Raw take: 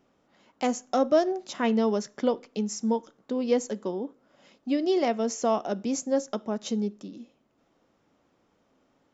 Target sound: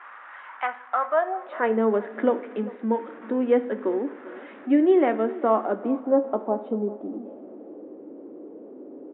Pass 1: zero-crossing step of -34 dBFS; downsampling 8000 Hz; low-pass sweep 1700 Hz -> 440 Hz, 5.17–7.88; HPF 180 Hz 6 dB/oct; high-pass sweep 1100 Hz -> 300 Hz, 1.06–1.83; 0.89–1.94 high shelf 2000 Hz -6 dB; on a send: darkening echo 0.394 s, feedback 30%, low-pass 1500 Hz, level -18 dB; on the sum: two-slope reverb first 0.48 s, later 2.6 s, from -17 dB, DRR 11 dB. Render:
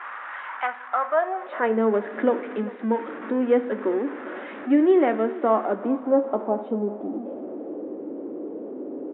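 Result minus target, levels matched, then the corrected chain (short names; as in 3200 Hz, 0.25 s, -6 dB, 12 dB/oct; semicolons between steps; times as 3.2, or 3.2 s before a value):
zero-crossing step: distortion +8 dB
zero-crossing step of -42.5 dBFS; downsampling 8000 Hz; low-pass sweep 1700 Hz -> 440 Hz, 5.17–7.88; HPF 180 Hz 6 dB/oct; high-pass sweep 1100 Hz -> 300 Hz, 1.06–1.83; 0.89–1.94 high shelf 2000 Hz -6 dB; on a send: darkening echo 0.394 s, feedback 30%, low-pass 1500 Hz, level -18 dB; on the sum: two-slope reverb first 0.48 s, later 2.6 s, from -17 dB, DRR 11 dB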